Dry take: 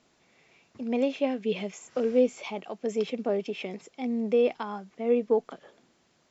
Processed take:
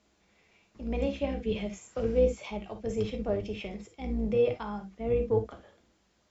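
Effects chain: octave divider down 2 oct, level -2 dB; reverberation, pre-delay 5 ms, DRR 4.5 dB; trim -5 dB

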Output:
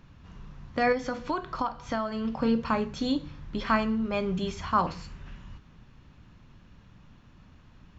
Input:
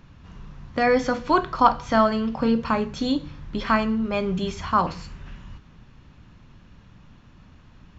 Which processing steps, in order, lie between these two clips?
0.92–2.25 s: compression 5:1, threshold -23 dBFS, peak gain reduction 12.5 dB; trim -4 dB

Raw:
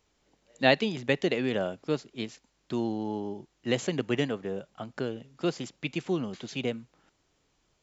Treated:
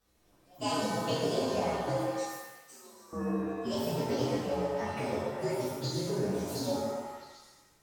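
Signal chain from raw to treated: frequency axis rescaled in octaves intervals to 124%; compression 4:1, threshold -36 dBFS, peak gain reduction 13.5 dB; 2.12–3.13 s: differentiator; repeats whose band climbs or falls 131 ms, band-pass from 460 Hz, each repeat 0.7 oct, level -1 dB; pitch-shifted reverb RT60 1 s, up +7 st, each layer -8 dB, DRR -5.5 dB

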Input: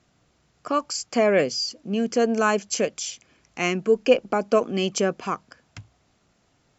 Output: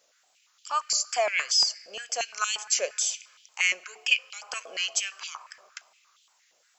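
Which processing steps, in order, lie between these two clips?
differentiator; in parallel at +2 dB: peak limiter -25 dBFS, peak gain reduction 10 dB; on the sum: wow and flutter 66 cents; added noise brown -66 dBFS; on a send at -16 dB: reverberation RT60 2.0 s, pre-delay 6 ms; on the sum: step-sequenced high-pass 8.6 Hz 560–3200 Hz

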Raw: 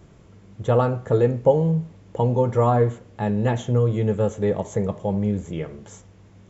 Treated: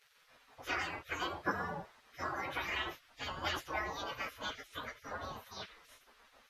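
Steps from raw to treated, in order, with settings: frequency-domain pitch shifter +10 st; spectral gate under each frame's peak -25 dB weak; treble shelf 5.5 kHz -10.5 dB; trim +5.5 dB

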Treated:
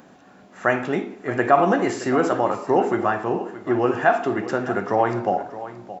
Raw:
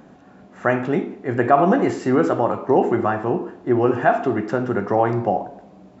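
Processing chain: tilt EQ +2 dB/octave; on a send: delay 622 ms -14.5 dB

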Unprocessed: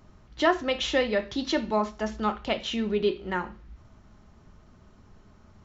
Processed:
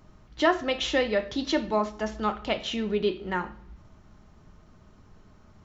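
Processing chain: simulated room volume 3800 m³, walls furnished, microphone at 0.5 m

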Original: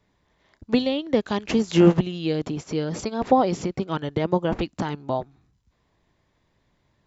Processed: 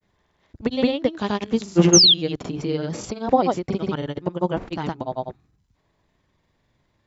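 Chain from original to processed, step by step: granulator, pitch spread up and down by 0 st; painted sound fall, 1.93–2.14 s, 3.1–6.7 kHz -14 dBFS; trim +1.5 dB

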